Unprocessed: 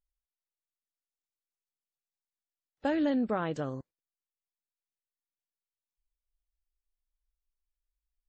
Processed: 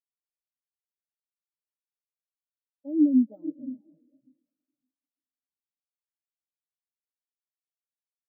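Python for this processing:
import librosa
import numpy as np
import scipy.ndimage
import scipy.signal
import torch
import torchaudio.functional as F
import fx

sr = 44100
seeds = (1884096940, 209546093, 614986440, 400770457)

y = fx.bit_reversed(x, sr, seeds[0], block=16)
y = fx.echo_diffused(y, sr, ms=490, feedback_pct=56, wet_db=-3.5)
y = fx.spectral_expand(y, sr, expansion=4.0)
y = y * librosa.db_to_amplitude(4.0)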